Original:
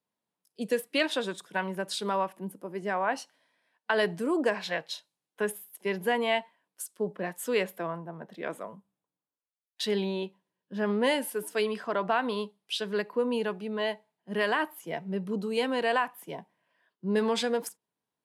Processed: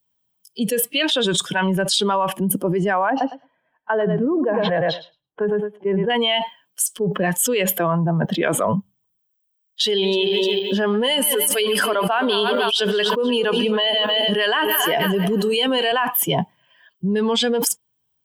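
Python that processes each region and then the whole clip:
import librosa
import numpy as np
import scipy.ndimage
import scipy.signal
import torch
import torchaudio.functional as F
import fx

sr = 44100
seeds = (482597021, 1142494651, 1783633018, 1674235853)

y = fx.chain(x, sr, fx.lowpass(hz=1200.0, slope=12),
    fx.echo_feedback(ms=107, feedback_pct=18, wet_db=-10.0), at=(3.1, 6.1))
y = fx.chain(y, sr, fx.reverse_delay_fb(ms=151, feedback_pct=68, wet_db=-13),
    fx.highpass(hz=270.0, slope=12),
    fx.high_shelf(hz=8900.0, db=9.5), at=(9.84, 15.92))
y = fx.bin_expand(y, sr, power=1.5)
y = fx.peak_eq(y, sr, hz=3100.0, db=15.0, octaves=0.23)
y = fx.env_flatten(y, sr, amount_pct=100)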